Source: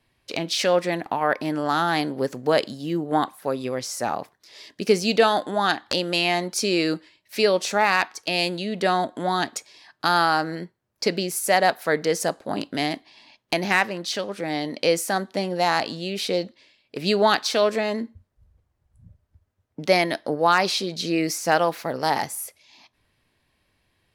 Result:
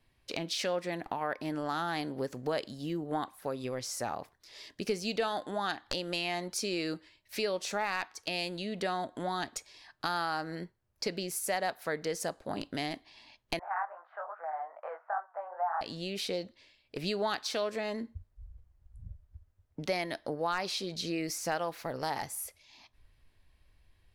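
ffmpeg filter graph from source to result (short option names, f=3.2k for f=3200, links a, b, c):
-filter_complex "[0:a]asettb=1/sr,asplit=3[a][b][c];[a]atrim=end=13.594[d];[b]atrim=start=13.59:end=15.81,asetpts=PTS-STARTPTS,afade=t=in:d=0.004:c=qsin,afade=t=out:st=2.216:d=0.004:c=qsin,acontrast=82,flanger=delay=18:depth=5.1:speed=2.4,asuperpass=centerf=1000:order=8:qfactor=1.2[e];[c]atrim=start=15.806[f];[d][e]acrossfade=d=0.004:c1=hsin:c2=qsin[g];[g][f]acrossfade=d=0.004:c1=qsin:c2=hsin,asubboost=boost=3:cutoff=91,acompressor=threshold=-30dB:ratio=2,lowshelf=f=62:g=11.5,volume=-5dB"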